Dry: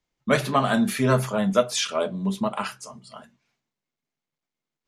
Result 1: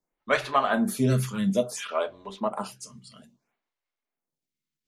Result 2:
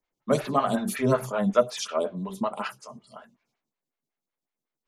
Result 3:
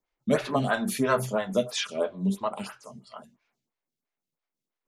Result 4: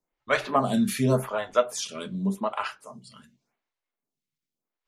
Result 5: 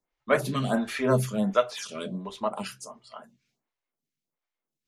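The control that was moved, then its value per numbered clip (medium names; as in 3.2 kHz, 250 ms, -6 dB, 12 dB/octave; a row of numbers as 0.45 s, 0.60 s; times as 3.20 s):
lamp-driven phase shifter, rate: 0.59 Hz, 5.4 Hz, 3 Hz, 0.87 Hz, 1.4 Hz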